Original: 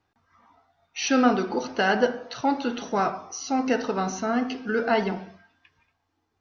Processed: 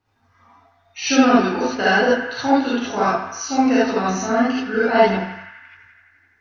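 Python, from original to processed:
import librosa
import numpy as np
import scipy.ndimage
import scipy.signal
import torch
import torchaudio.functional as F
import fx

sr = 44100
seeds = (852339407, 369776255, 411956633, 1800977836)

p1 = x + fx.echo_banded(x, sr, ms=85, feedback_pct=82, hz=1800.0, wet_db=-10.5, dry=0)
p2 = fx.rev_gated(p1, sr, seeds[0], gate_ms=100, shape='rising', drr_db=-8.0)
y = p2 * librosa.db_to_amplitude(-2.0)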